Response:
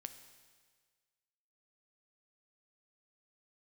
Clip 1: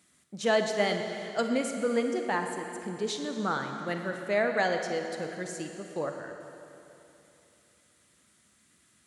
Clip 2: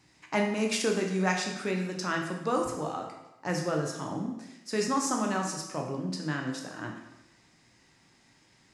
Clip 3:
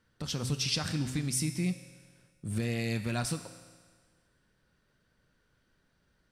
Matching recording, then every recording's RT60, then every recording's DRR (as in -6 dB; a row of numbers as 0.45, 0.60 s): 3; 3.0, 0.95, 1.6 s; 4.5, 1.0, 8.5 dB